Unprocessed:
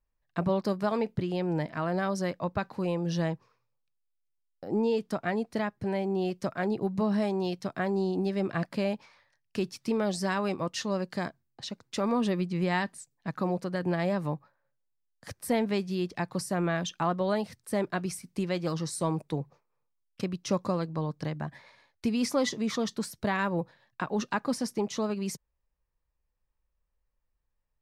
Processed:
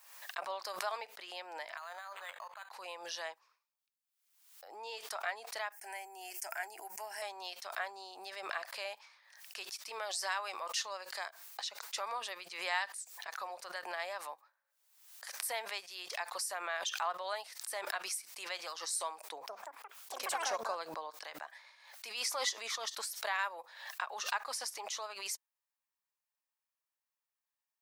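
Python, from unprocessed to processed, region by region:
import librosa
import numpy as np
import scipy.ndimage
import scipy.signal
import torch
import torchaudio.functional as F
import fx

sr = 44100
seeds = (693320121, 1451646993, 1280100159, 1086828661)

y = fx.chain(x, sr, fx.highpass(hz=880.0, slope=12),
    fx.over_compress(threshold_db=-39.0, ratio=-1.0),
    fx.resample_linear(factor=8), at=(1.77, 2.71))
y = fx.chain(y, sr, fx.bass_treble(bass_db=1, treble_db=14),
    fx.fixed_phaser(hz=780.0, stages=8), at=(5.72, 7.22))
y = fx.chain(y, sr, fx.low_shelf(hz=500.0, db=11.5),
    fx.echo_pitch(ms=185, semitones=6, count=3, db_per_echo=-6.0), at=(19.27, 21.1))
y = scipy.signal.sosfilt(scipy.signal.butter(4, 690.0, 'highpass', fs=sr, output='sos'), y)
y = fx.tilt_eq(y, sr, slope=2.0)
y = fx.pre_swell(y, sr, db_per_s=66.0)
y = y * librosa.db_to_amplitude(-5.0)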